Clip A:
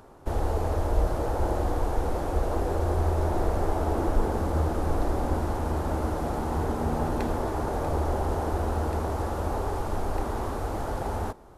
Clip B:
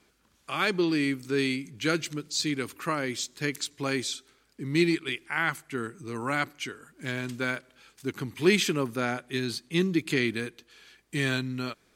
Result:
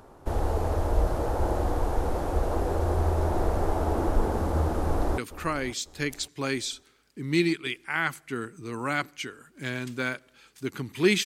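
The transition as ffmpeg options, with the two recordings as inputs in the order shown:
ffmpeg -i cue0.wav -i cue1.wav -filter_complex "[0:a]apad=whole_dur=11.25,atrim=end=11.25,atrim=end=5.182[link_01];[1:a]atrim=start=2.598:end=8.67[link_02];[link_01][link_02]acrossfade=duration=0.004:curve1=hsin:curve2=hsin,asplit=2[link_03][link_04];[link_04]afade=type=in:start_time=4.75:duration=0.01,afade=type=out:start_time=5.18:duration=0.01,aecho=0:1:550|1100|1650:0.158489|0.0475468|0.014264[link_05];[link_03][link_05]amix=inputs=2:normalize=0" out.wav

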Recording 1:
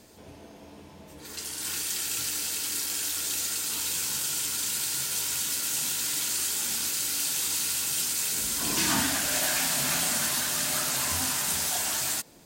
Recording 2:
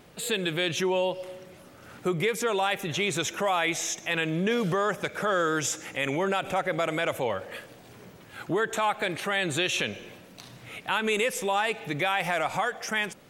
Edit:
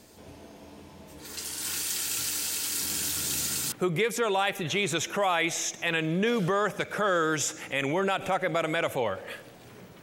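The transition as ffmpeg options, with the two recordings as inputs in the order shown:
ffmpeg -i cue0.wav -i cue1.wav -filter_complex "[0:a]asettb=1/sr,asplit=3[link_01][link_02][link_03];[link_01]atrim=end=2.804[link_04];[link_02]atrim=start=2.8:end=3.72,asetpts=PTS-STARTPTS,afade=type=in:duration=0.004:curve=qsin,afade=type=out:start_time=0.916:duration=0.004:curve=qsin,equalizer=frequency=140:width=0.73:gain=13[link_05];[link_03]atrim=start=3.716[link_06];[link_04][link_05]acrossfade=duration=0.004:curve1=hsin:curve2=qsin[link_07];[link_07][link_06]acrossfade=duration=0.004:curve1=qsin:curve2=hsin,apad=whole_dur=10.02,atrim=end=10.02,atrim=end=3.722[link_08];[1:a]atrim=start=1.958:end=8.26[link_09];[link_08][link_09]acrossfade=duration=0.004:curve1=hsin:curve2=hsin" out.wav

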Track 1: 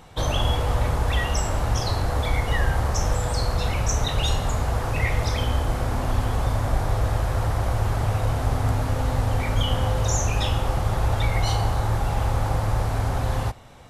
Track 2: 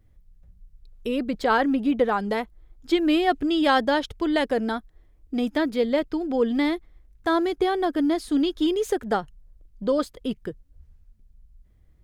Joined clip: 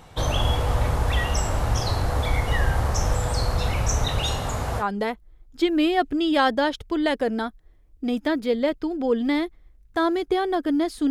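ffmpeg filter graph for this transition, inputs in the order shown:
ffmpeg -i cue0.wav -i cue1.wav -filter_complex "[0:a]asettb=1/sr,asplit=3[link_01][link_02][link_03];[link_01]atrim=end=4.184[link_04];[link_02]atrim=start=4.18:end=4.84,asetpts=PTS-STARTPTS,afade=type=in:duration=0.004:curve=qsin,afade=type=out:start_time=0.656:duration=0.004:curve=qsin,lowshelf=frequency=73:gain=-9[link_05];[link_03]atrim=start=4.836[link_06];[link_04][link_05]acrossfade=duration=0.004:curve1=hsin:curve2=qsin[link_07];[link_07][link_06]acrossfade=duration=0.004:curve1=qsin:curve2=hsin,apad=whole_dur=11.1,atrim=end=11.1,atrim=end=4.84,asetpts=PTS-STARTPTS[link_08];[1:a]atrim=start=2.08:end=8.4,asetpts=PTS-STARTPTS[link_09];[link_08][link_09]acrossfade=duration=0.06:curve1=tri:curve2=tri" out.wav

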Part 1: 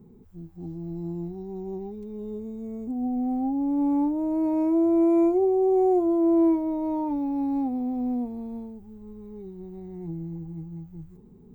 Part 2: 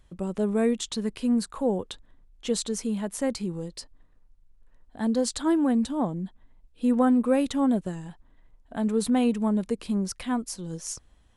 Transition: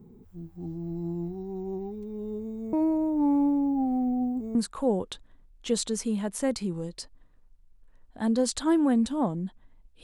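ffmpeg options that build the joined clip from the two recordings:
ffmpeg -i cue0.wav -i cue1.wav -filter_complex "[0:a]apad=whole_dur=10.03,atrim=end=10.03,asplit=2[link_01][link_02];[link_01]atrim=end=2.732[link_03];[link_02]atrim=start=2.728:end=4.552,asetpts=PTS-STARTPTS,areverse[link_04];[1:a]atrim=start=1.338:end=6.82[link_05];[link_03][link_04]acrossfade=duration=0.004:curve1=hsin:curve2=hsin[link_06];[link_06][link_05]acrossfade=duration=0.004:curve1=hsin:curve2=hsin" out.wav

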